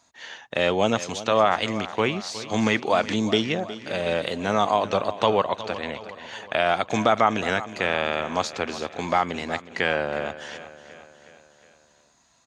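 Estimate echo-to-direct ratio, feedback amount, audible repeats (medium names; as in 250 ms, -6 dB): -13.5 dB, 55%, 4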